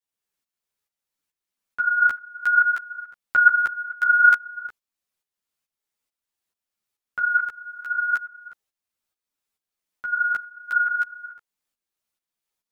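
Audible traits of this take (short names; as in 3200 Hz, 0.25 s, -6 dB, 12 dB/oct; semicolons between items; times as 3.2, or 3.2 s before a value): tremolo saw up 2.3 Hz, depth 70%; a shimmering, thickened sound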